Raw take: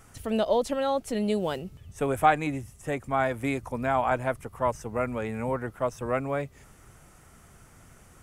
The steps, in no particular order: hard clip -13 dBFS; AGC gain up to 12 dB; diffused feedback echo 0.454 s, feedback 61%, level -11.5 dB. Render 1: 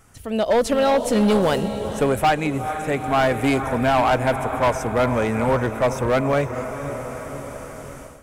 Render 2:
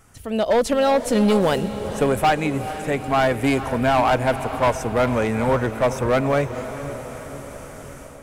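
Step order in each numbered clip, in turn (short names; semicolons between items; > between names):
diffused feedback echo > AGC > hard clip; AGC > hard clip > diffused feedback echo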